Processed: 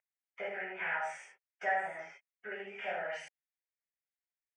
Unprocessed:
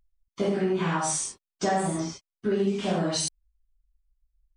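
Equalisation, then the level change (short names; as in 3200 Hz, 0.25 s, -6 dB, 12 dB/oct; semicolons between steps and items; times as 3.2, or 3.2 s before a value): HPF 690 Hz 12 dB/oct; synth low-pass 2100 Hz, resonance Q 2.5; fixed phaser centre 1100 Hz, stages 6; -4.0 dB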